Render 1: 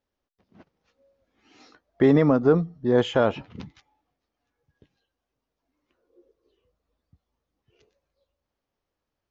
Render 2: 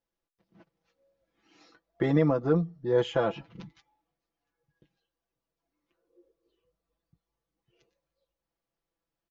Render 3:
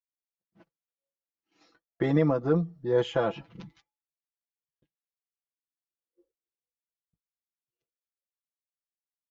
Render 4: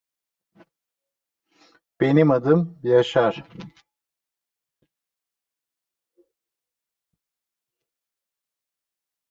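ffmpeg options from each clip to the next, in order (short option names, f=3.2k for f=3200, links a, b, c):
-af "aecho=1:1:6:0.78,volume=-7.5dB"
-af "agate=range=-33dB:threshold=-54dB:ratio=3:detection=peak"
-af "lowshelf=f=180:g=-5,volume=8.5dB"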